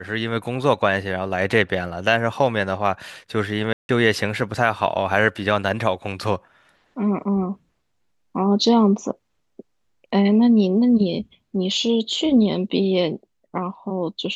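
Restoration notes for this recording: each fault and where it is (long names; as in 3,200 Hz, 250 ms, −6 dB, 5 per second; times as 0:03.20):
0:03.73–0:03.89: drop-out 161 ms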